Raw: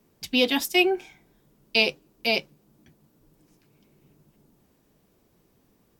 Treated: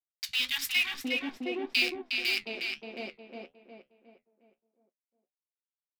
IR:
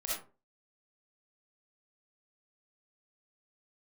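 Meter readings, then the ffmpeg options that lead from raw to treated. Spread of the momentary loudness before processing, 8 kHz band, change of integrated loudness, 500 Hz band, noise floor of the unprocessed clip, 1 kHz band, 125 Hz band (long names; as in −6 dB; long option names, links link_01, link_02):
6 LU, −2.5 dB, −6.5 dB, −12.0 dB, −66 dBFS, −12.0 dB, below −10 dB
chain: -filter_complex "[0:a]acompressor=threshold=-43dB:ratio=1.5,highshelf=frequency=3800:gain=10,acrusher=bits=4:mix=0:aa=0.5,asplit=2[link_01][link_02];[link_02]adelay=360,lowpass=frequency=3400:poles=1,volume=-3dB,asplit=2[link_03][link_04];[link_04]adelay=360,lowpass=frequency=3400:poles=1,volume=0.44,asplit=2[link_05][link_06];[link_06]adelay=360,lowpass=frequency=3400:poles=1,volume=0.44,asplit=2[link_07][link_08];[link_08]adelay=360,lowpass=frequency=3400:poles=1,volume=0.44,asplit=2[link_09][link_10];[link_10]adelay=360,lowpass=frequency=3400:poles=1,volume=0.44,asplit=2[link_11][link_12];[link_12]adelay=360,lowpass=frequency=3400:poles=1,volume=0.44[link_13];[link_03][link_05][link_07][link_09][link_11][link_13]amix=inputs=6:normalize=0[link_14];[link_01][link_14]amix=inputs=2:normalize=0,flanger=delay=9.9:depth=6.5:regen=-57:speed=1.7:shape=triangular,equalizer=frequency=125:width_type=o:width=1:gain=-4,equalizer=frequency=250:width_type=o:width=1:gain=7,equalizer=frequency=2000:width_type=o:width=1:gain=10,equalizer=frequency=4000:width_type=o:width=1:gain=5,acrossover=split=150|960[link_15][link_16][link_17];[link_15]adelay=60[link_18];[link_16]adelay=710[link_19];[link_18][link_19][link_17]amix=inputs=3:normalize=0,volume=-3dB"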